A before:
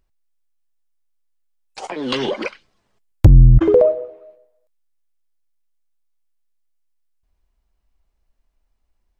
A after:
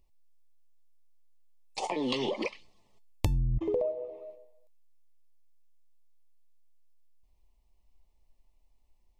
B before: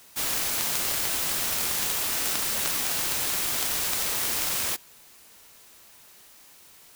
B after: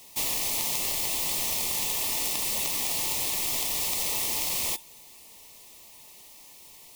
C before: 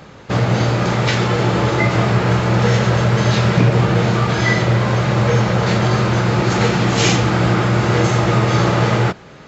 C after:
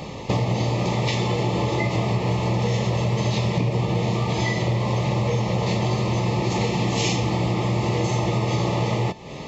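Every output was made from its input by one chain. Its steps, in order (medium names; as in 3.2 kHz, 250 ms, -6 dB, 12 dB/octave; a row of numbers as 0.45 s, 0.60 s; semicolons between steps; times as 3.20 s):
compression 5:1, threshold -27 dBFS; Butterworth band-stop 1.5 kHz, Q 1.8; feedback comb 890 Hz, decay 0.25 s, mix 70%; peak normalisation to -9 dBFS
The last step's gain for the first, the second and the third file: +8.5 dB, +12.0 dB, +16.5 dB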